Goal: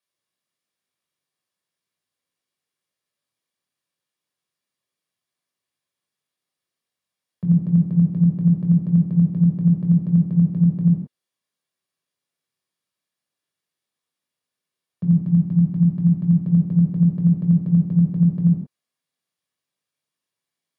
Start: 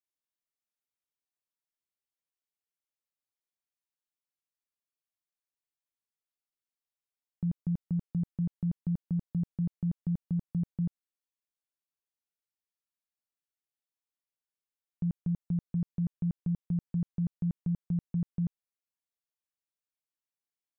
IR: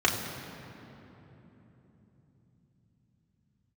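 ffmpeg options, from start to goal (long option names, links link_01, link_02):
-filter_complex "[0:a]asettb=1/sr,asplit=3[link_01][link_02][link_03];[link_01]atrim=end=15.074[link_04];[link_02]atrim=start=15.07:end=16.39,asetpts=PTS-STARTPTS,afade=type=in:duration=0.004:curve=qsin,afade=type=out:start_time=1.316:duration=0.004:curve=qsin,equalizer=frequency=470:width=3.6:gain=-12[link_05];[link_03]atrim=start=16.386[link_06];[link_04][link_05]acrossfade=duration=0.004:curve1=hsin:curve2=qsin[link_07];[link_07][link_06]acrossfade=duration=0.004:curve1=qsin:curve2=hsin[link_08];[1:a]atrim=start_sample=2205,afade=type=out:start_time=0.34:duration=0.01,atrim=end_sample=15435,asetrate=66150,aresample=44100[link_09];[link_08][link_09]afir=irnorm=-1:irlink=0,volume=1.5dB"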